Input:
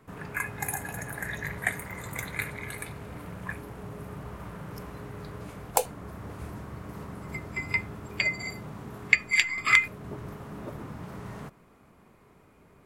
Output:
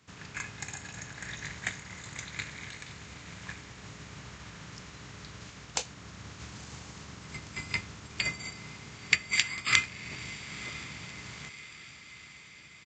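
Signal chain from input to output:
compressing power law on the bin magnitudes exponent 0.61
high-pass filter 71 Hz
parametric band 590 Hz −12.5 dB 2.9 octaves
on a send: feedback delay with all-pass diffusion 976 ms, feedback 58%, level −14 dB
on the sum: downsampling to 16,000 Hz

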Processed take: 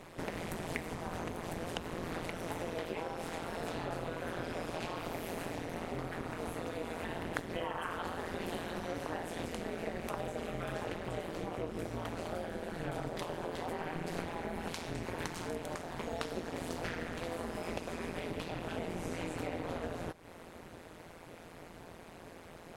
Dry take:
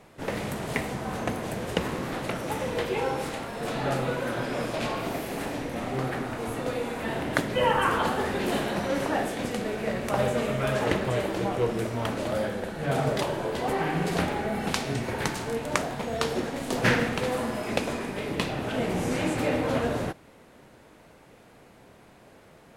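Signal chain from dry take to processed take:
downward compressor, threshold −39 dBFS, peak gain reduction 20 dB
amplitude modulation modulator 170 Hz, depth 100%
level +6 dB

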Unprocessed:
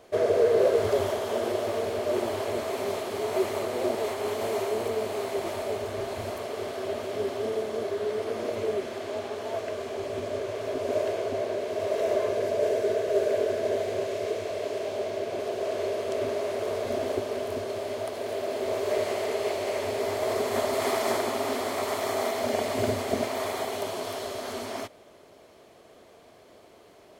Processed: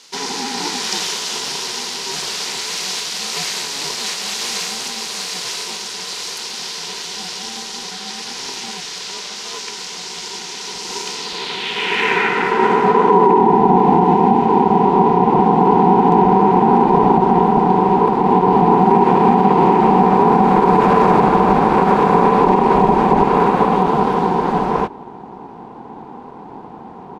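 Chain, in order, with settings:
downsampling to 32,000 Hz
band-pass filter sweep 5,300 Hz → 470 Hz, 0:11.13–0:13.61
dynamic equaliser 2,300 Hz, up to +4 dB, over −54 dBFS, Q 1.4
frequency shifter +66 Hz
low-shelf EQ 340 Hz −10.5 dB
ring modulation 280 Hz
boost into a limiter +29.5 dB
level −1 dB

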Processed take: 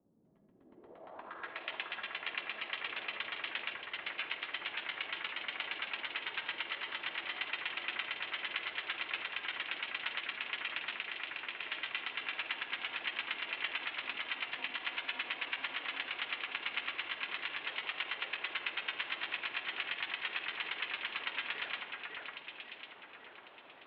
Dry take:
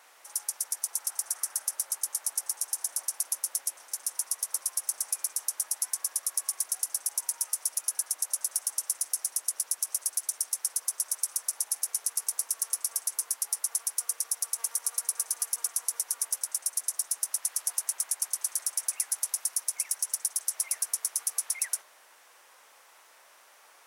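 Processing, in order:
samples in bit-reversed order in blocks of 16 samples
on a send at −13 dB: parametric band 540 Hz +8 dB 0.77 octaves + convolution reverb RT60 0.80 s, pre-delay 22 ms
on the sum: brickwall limiter −20 dBFS, peak gain reduction 10 dB
0:10.97–0:11.64: downward compressor, threshold −36 dBFS, peak gain reduction 6.5 dB
single-sideband voice off tune −200 Hz 270–3,500 Hz
low-pass filter sweep 200 Hz → 2,600 Hz, 0:00.52–0:01.65
delay that swaps between a low-pass and a high-pass 549 ms, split 2,100 Hz, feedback 55%, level −2.5 dB

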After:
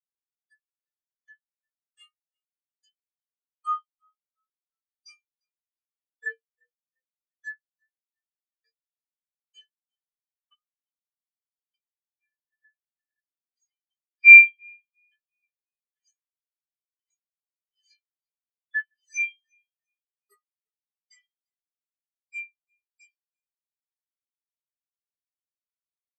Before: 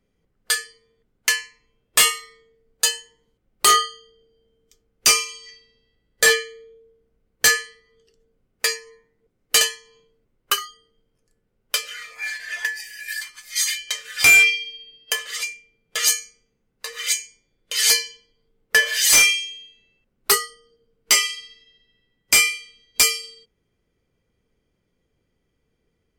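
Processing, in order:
echo with shifted repeats 348 ms, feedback 57%, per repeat +30 Hz, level −10 dB
pitch-shifted copies added −5 semitones −10 dB, +12 semitones −12 dB
every bin expanded away from the loudest bin 4 to 1
level +2 dB

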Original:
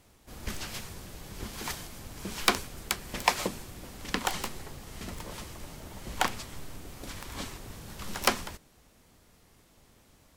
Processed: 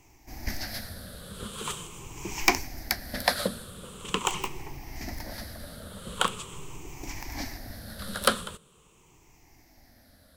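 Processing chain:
rippled gain that drifts along the octave scale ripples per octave 0.71, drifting −0.43 Hz, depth 14 dB
0:04.34–0:04.96: parametric band 7,000 Hz −9.5 dB 0.43 octaves

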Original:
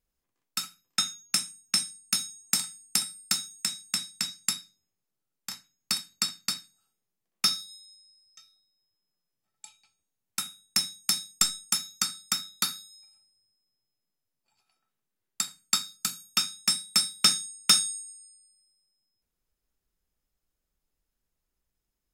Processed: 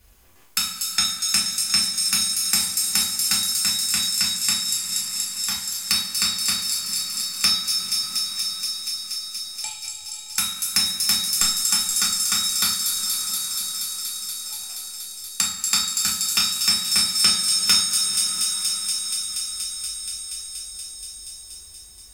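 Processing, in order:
low shelf with overshoot 110 Hz +12 dB, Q 1.5
on a send: delay with a high-pass on its return 238 ms, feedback 72%, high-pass 5,400 Hz, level −3 dB
on the sum: coupled-rooms reverb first 0.4 s, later 3.5 s, from −18 dB, DRR −6 dB
multiband upward and downward compressor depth 70%
level +1 dB

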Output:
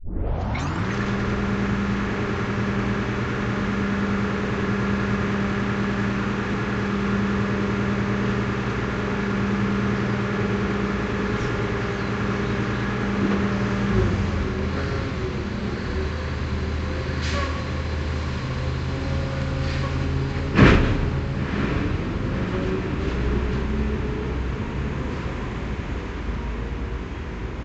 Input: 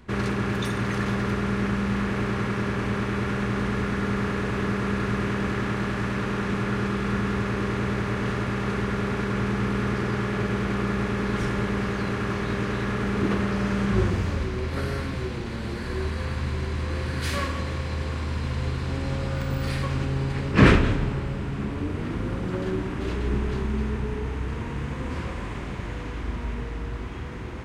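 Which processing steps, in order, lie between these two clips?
turntable start at the beginning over 0.92 s
feedback delay with all-pass diffusion 1,020 ms, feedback 71%, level −10 dB
downsampling to 16,000 Hz
level +1.5 dB

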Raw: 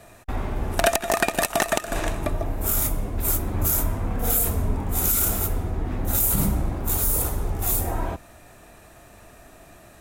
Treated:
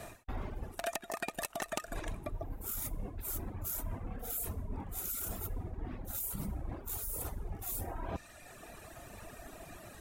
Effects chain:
reversed playback
downward compressor 8 to 1, threshold −36 dBFS, peak gain reduction 20.5 dB
reversed playback
reverb reduction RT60 1.7 s
level +2 dB

